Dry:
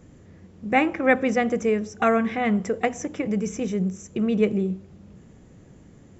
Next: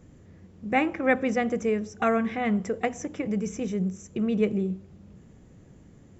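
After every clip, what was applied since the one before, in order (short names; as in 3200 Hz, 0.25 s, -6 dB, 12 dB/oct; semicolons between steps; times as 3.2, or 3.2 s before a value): low shelf 170 Hz +3 dB; gain -4 dB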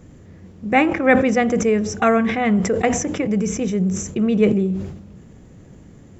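sustainer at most 65 dB/s; gain +7.5 dB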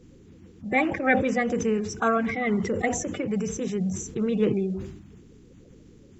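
bin magnitudes rounded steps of 30 dB; gain -6.5 dB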